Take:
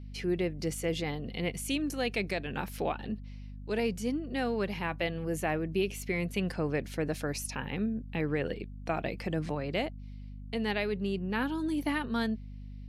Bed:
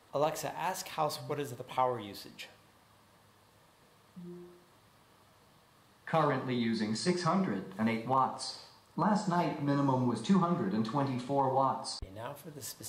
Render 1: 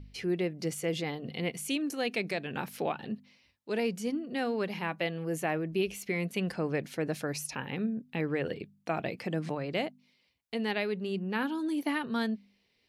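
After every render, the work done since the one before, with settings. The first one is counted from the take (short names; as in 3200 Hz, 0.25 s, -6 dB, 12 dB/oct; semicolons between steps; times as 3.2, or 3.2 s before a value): de-hum 50 Hz, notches 5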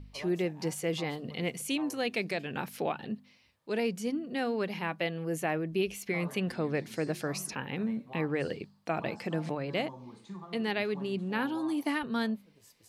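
add bed -17 dB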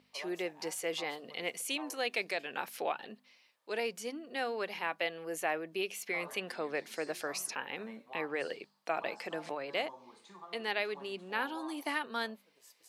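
HPF 520 Hz 12 dB/oct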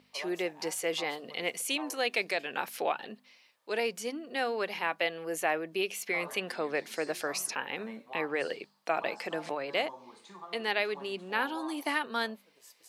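gain +4 dB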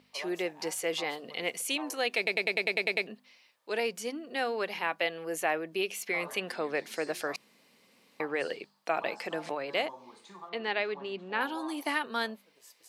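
2.17 stutter in place 0.10 s, 9 plays; 7.36–8.2 room tone; 10.49–11.41 air absorption 140 m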